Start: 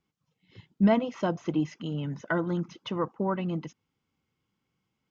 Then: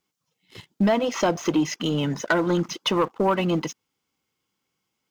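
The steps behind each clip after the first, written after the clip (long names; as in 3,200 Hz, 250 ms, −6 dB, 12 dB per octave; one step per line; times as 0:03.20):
bass and treble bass −10 dB, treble +8 dB
downward compressor 5 to 1, threshold −29 dBFS, peak gain reduction 9.5 dB
leveller curve on the samples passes 2
level +6.5 dB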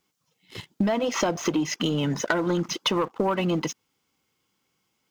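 downward compressor 6 to 1, threshold −26 dBFS, peak gain reduction 9 dB
level +4.5 dB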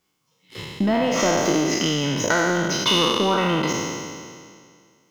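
peak hold with a decay on every bin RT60 2.07 s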